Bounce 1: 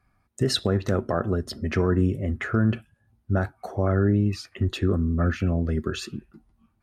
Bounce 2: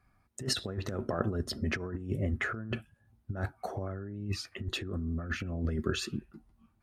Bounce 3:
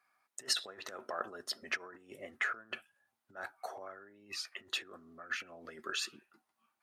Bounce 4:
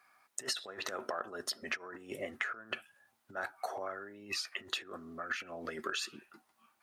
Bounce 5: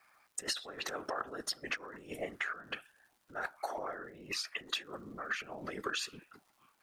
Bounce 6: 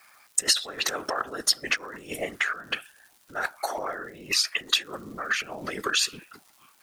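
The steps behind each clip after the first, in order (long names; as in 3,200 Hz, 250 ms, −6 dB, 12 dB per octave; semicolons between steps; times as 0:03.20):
compressor whose output falls as the input rises −26 dBFS, ratio −0.5; level −6 dB
high-pass filter 820 Hz 12 dB per octave
downward compressor 8 to 1, threshold −43 dBFS, peak gain reduction 16 dB; level +9 dB
random phases in short frames; surface crackle 180 per second −58 dBFS
high-shelf EQ 2,600 Hz +10 dB; level +7 dB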